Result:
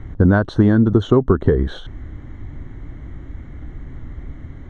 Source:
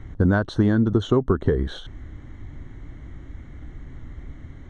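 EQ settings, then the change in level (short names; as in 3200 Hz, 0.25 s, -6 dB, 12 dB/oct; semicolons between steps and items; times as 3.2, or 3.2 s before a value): high shelf 3100 Hz -8.5 dB; +5.5 dB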